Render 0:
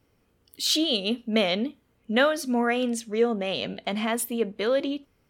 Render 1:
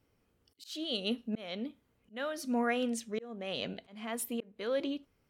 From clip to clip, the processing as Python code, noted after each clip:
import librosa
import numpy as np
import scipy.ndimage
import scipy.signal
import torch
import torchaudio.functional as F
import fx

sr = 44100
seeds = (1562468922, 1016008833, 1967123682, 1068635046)

y = fx.auto_swell(x, sr, attack_ms=423.0)
y = y * librosa.db_to_amplitude(-6.5)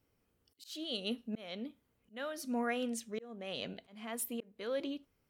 y = fx.high_shelf(x, sr, hz=10000.0, db=7.0)
y = y * librosa.db_to_amplitude(-4.0)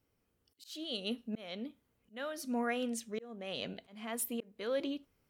y = fx.rider(x, sr, range_db=10, speed_s=2.0)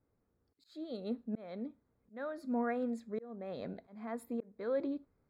y = scipy.signal.lfilter(np.full(15, 1.0 / 15), 1.0, x)
y = y * librosa.db_to_amplitude(1.0)